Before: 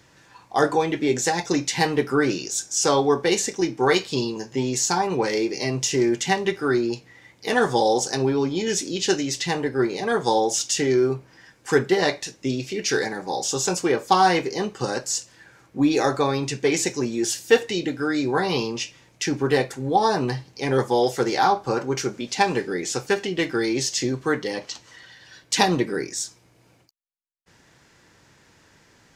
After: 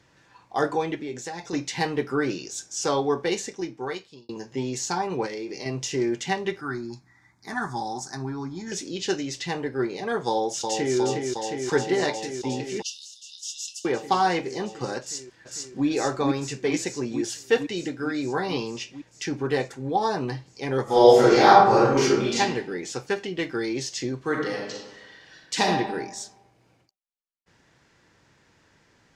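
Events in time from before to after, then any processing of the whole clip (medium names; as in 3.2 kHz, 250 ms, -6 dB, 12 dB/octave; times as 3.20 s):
0.95–1.53 s: compression 2:1, threshold -31 dBFS
3.28–4.29 s: fade out
5.26–5.66 s: compression, threshold -25 dBFS
6.61–8.72 s: static phaser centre 1.2 kHz, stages 4
10.27–10.97 s: echo throw 360 ms, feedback 85%, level -4.5 dB
12.82–13.85 s: Chebyshev high-pass 2.7 kHz, order 10
15.00–15.86 s: echo throw 450 ms, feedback 75%, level -1 dB
20.84–22.39 s: reverb throw, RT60 0.86 s, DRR -11 dB
24.21–25.67 s: reverb throw, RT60 1.1 s, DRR -0.5 dB
whole clip: treble shelf 9.3 kHz -12 dB; trim -4.5 dB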